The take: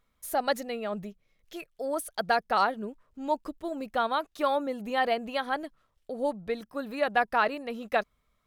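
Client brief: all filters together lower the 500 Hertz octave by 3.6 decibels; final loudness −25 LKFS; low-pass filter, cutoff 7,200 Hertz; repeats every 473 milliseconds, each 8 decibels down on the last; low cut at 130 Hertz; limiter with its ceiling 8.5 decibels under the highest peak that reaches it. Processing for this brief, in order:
high-pass filter 130 Hz
low-pass filter 7,200 Hz
parametric band 500 Hz −4.5 dB
brickwall limiter −20.5 dBFS
repeating echo 473 ms, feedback 40%, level −8 dB
level +9 dB

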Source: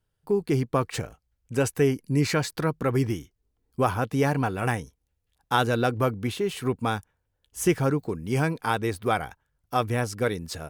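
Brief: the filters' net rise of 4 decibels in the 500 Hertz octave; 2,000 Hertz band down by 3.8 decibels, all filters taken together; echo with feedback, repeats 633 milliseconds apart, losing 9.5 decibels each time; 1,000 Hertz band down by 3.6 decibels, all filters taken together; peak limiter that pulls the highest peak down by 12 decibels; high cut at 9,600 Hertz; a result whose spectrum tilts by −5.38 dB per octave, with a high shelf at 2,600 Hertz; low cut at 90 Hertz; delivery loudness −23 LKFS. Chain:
high-pass filter 90 Hz
low-pass filter 9,600 Hz
parametric band 500 Hz +6.5 dB
parametric band 1,000 Hz −7.5 dB
parametric band 2,000 Hz −4 dB
high-shelf EQ 2,600 Hz +3.5 dB
brickwall limiter −19 dBFS
repeating echo 633 ms, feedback 33%, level −9.5 dB
level +7.5 dB

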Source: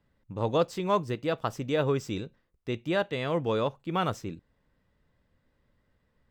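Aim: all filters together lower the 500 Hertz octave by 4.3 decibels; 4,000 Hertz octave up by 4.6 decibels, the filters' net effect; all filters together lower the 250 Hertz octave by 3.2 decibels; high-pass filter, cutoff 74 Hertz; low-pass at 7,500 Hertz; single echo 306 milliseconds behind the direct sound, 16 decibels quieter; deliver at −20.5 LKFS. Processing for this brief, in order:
high-pass filter 74 Hz
low-pass filter 7,500 Hz
parametric band 250 Hz −3 dB
parametric band 500 Hz −4.5 dB
parametric band 4,000 Hz +6 dB
single-tap delay 306 ms −16 dB
level +11.5 dB

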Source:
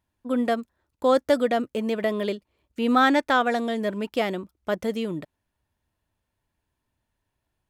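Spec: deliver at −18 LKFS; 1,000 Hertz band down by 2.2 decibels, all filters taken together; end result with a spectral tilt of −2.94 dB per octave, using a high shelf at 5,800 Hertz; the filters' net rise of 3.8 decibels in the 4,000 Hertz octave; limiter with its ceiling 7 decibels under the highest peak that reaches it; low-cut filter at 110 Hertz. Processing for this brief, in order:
high-pass filter 110 Hz
parametric band 1,000 Hz −3.5 dB
parametric band 4,000 Hz +6.5 dB
high-shelf EQ 5,800 Hz −5 dB
level +9 dB
brickwall limiter −5.5 dBFS

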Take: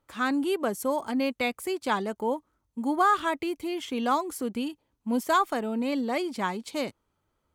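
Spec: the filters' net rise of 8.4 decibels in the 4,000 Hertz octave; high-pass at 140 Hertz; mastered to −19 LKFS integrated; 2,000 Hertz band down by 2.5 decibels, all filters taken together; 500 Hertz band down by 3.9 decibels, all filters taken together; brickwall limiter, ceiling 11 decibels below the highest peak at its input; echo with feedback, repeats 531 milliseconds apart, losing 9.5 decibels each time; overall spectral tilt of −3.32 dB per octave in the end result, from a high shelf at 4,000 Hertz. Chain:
high-pass filter 140 Hz
parametric band 500 Hz −5 dB
parametric band 2,000 Hz −7 dB
high-shelf EQ 4,000 Hz +7.5 dB
parametric band 4,000 Hz +8.5 dB
brickwall limiter −21 dBFS
repeating echo 531 ms, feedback 33%, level −9.5 dB
level +12 dB

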